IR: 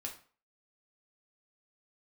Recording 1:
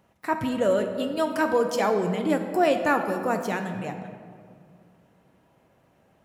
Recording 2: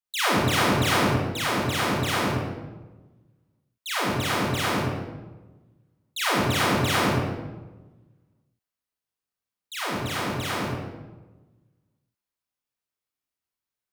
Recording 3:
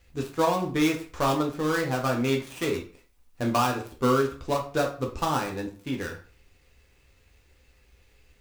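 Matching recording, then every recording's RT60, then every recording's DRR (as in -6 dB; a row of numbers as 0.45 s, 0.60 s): 3; 2.2 s, 1.2 s, 0.40 s; 5.0 dB, -7.5 dB, -0.5 dB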